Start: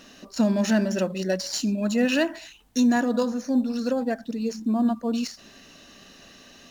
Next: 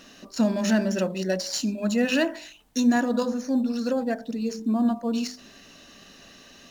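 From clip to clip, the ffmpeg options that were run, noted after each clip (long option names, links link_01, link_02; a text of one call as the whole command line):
ffmpeg -i in.wav -af "bandreject=frequency=50.16:width_type=h:width=4,bandreject=frequency=100.32:width_type=h:width=4,bandreject=frequency=150.48:width_type=h:width=4,bandreject=frequency=200.64:width_type=h:width=4,bandreject=frequency=250.8:width_type=h:width=4,bandreject=frequency=300.96:width_type=h:width=4,bandreject=frequency=351.12:width_type=h:width=4,bandreject=frequency=401.28:width_type=h:width=4,bandreject=frequency=451.44:width_type=h:width=4,bandreject=frequency=501.6:width_type=h:width=4,bandreject=frequency=551.76:width_type=h:width=4,bandreject=frequency=601.92:width_type=h:width=4,bandreject=frequency=652.08:width_type=h:width=4,bandreject=frequency=702.24:width_type=h:width=4,bandreject=frequency=752.4:width_type=h:width=4,bandreject=frequency=802.56:width_type=h:width=4,bandreject=frequency=852.72:width_type=h:width=4,bandreject=frequency=902.88:width_type=h:width=4,bandreject=frequency=953.04:width_type=h:width=4" out.wav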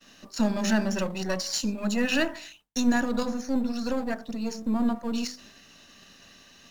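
ffmpeg -i in.wav -filter_complex "[0:a]highpass=43,agate=range=-33dB:threshold=-46dB:ratio=3:detection=peak,acrossover=split=220|860[link_01][link_02][link_03];[link_02]aeval=exprs='max(val(0),0)':channel_layout=same[link_04];[link_01][link_04][link_03]amix=inputs=3:normalize=0" out.wav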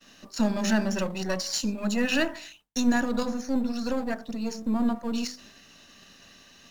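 ffmpeg -i in.wav -af anull out.wav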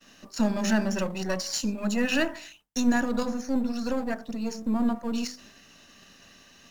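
ffmpeg -i in.wav -af "equalizer=frequency=3900:width_type=o:width=0.56:gain=-3" out.wav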